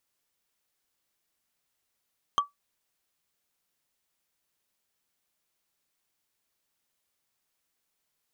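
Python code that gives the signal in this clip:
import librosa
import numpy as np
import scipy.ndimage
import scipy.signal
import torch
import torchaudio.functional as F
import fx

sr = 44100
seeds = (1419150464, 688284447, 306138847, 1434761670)

y = fx.strike_wood(sr, length_s=0.45, level_db=-16.0, body='bar', hz=1150.0, decay_s=0.15, tilt_db=7.5, modes=5)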